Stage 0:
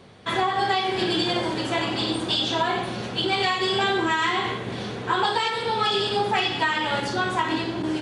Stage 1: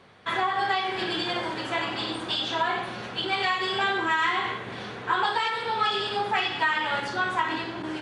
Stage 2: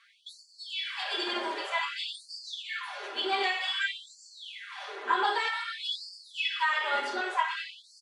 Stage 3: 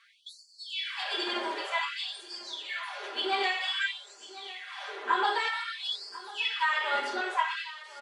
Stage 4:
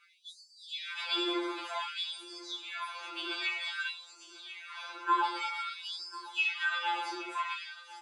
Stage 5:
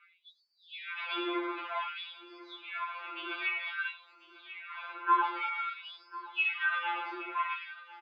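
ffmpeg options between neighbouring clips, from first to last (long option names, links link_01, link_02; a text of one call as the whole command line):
ffmpeg -i in.wav -af "equalizer=frequency=1500:width_type=o:width=2.4:gain=9.5,volume=-9dB" out.wav
ffmpeg -i in.wav -af "aecho=1:1:5:0.87,afftfilt=real='re*gte(b*sr/1024,220*pow(4400/220,0.5+0.5*sin(2*PI*0.53*pts/sr)))':imag='im*gte(b*sr/1024,220*pow(4400/220,0.5+0.5*sin(2*PI*0.53*pts/sr)))':win_size=1024:overlap=0.75,volume=-4.5dB" out.wav
ffmpeg -i in.wav -af "aecho=1:1:1046:0.133" out.wav
ffmpeg -i in.wav -af "afftfilt=real='re*2.83*eq(mod(b,8),0)':imag='im*2.83*eq(mod(b,8),0)':win_size=2048:overlap=0.75" out.wav
ffmpeg -i in.wav -af "highpass=250,equalizer=frequency=310:width_type=q:width=4:gain=-7,equalizer=frequency=490:width_type=q:width=4:gain=-7,equalizer=frequency=810:width_type=q:width=4:gain=-8,equalizer=frequency=1700:width_type=q:width=4:gain=-4,lowpass=frequency=2500:width=0.5412,lowpass=frequency=2500:width=1.3066,aecho=1:1:88:0.0631,volume=4.5dB" out.wav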